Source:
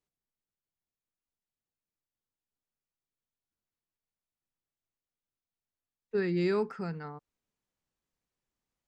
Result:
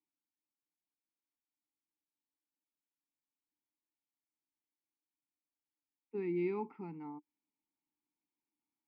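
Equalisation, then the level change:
formant filter u
high-frequency loss of the air 430 metres
high-shelf EQ 3,200 Hz +11.5 dB
+7.0 dB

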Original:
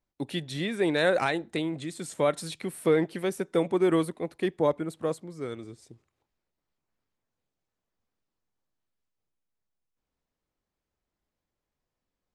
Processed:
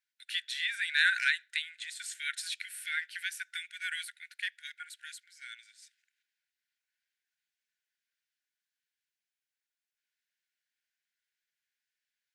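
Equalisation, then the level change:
linear-phase brick-wall high-pass 1,400 Hz
high-shelf EQ 5,100 Hz −7 dB
+5.5 dB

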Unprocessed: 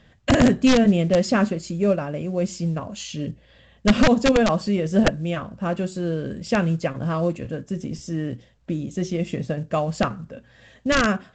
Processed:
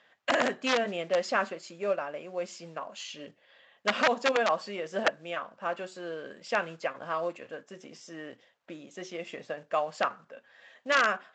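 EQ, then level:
high-pass filter 770 Hz 12 dB per octave
low-pass filter 2,200 Hz 6 dB per octave
0.0 dB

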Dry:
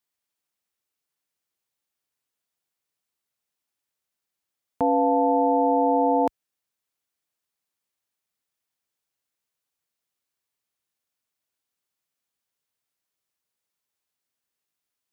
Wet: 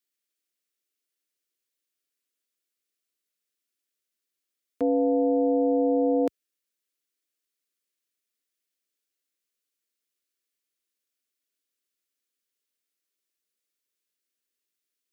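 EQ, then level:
high-pass filter 120 Hz
dynamic equaliser 570 Hz, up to +3 dB, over −29 dBFS, Q 0.73
phaser with its sweep stopped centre 350 Hz, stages 4
0.0 dB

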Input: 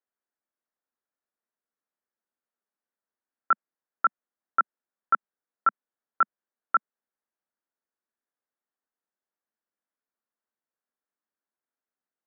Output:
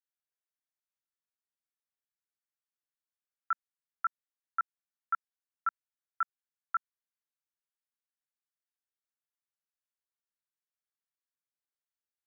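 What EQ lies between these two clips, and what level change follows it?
high-pass filter 1,300 Hz 12 dB per octave
−6.5 dB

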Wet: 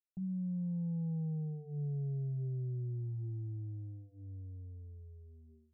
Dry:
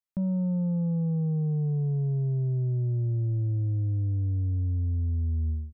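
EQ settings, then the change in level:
Chebyshev low-pass filter 820 Hz, order 8
mains-hum notches 50/100/150/200/250/300/350/400 Hz
phaser with its sweep stopped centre 380 Hz, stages 8
−9.0 dB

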